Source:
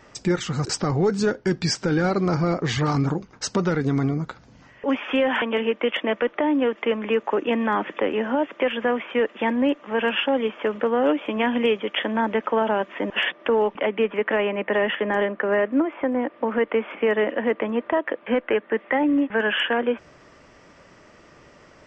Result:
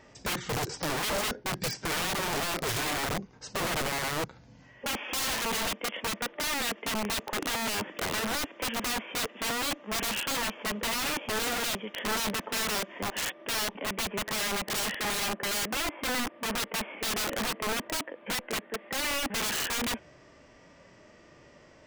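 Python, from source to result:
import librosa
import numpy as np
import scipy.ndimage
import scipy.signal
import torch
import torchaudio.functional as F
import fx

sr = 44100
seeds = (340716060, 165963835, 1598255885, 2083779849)

y = fx.peak_eq(x, sr, hz=1300.0, db=-5.5, octaves=0.48)
y = fx.hpss(y, sr, part='percussive', gain_db=-16)
y = (np.mod(10.0 ** (25.5 / 20.0) * y + 1.0, 2.0) - 1.0) / 10.0 ** (25.5 / 20.0)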